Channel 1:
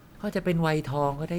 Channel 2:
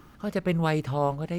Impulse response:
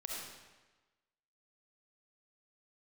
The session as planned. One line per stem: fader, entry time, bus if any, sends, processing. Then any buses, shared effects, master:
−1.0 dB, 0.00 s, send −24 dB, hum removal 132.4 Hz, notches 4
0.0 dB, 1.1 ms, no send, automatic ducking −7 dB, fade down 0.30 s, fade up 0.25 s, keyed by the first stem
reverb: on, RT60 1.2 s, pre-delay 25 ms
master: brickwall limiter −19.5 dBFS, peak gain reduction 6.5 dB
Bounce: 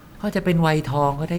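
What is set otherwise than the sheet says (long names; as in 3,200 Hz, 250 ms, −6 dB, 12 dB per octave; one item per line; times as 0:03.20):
stem 1 −1.0 dB → +6.0 dB
master: missing brickwall limiter −19.5 dBFS, peak gain reduction 6.5 dB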